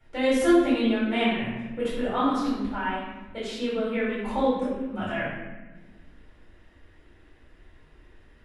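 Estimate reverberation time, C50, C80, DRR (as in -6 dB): 1.3 s, -0.5 dB, 2.5 dB, -10.5 dB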